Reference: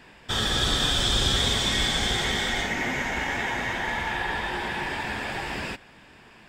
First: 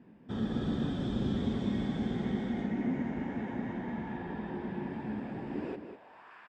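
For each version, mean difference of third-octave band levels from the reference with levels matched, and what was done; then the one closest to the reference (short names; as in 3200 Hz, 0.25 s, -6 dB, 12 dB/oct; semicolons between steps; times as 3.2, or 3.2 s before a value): 11.5 dB: band-pass sweep 220 Hz -> 1300 Hz, 5.46–6.34; outdoor echo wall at 34 m, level -8 dB; gain +4.5 dB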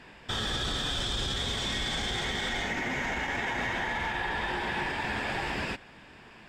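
3.0 dB: high shelf 9800 Hz -10 dB; limiter -22.5 dBFS, peak gain reduction 11 dB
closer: second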